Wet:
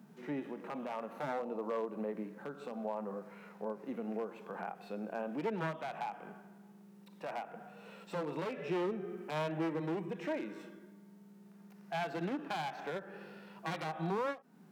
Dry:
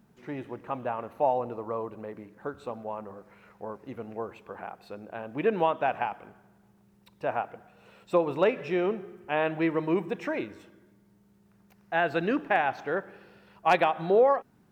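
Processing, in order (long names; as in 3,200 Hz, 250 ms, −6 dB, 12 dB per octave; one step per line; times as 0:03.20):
wavefolder on the positive side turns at −25.5 dBFS
Chebyshev high-pass filter 150 Hz, order 6
downward compressor 6 to 1, threshold −38 dBFS, peak gain reduction 15.5 dB
harmonic and percussive parts rebalanced percussive −12 dB
every ending faded ahead of time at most 250 dB per second
level +6.5 dB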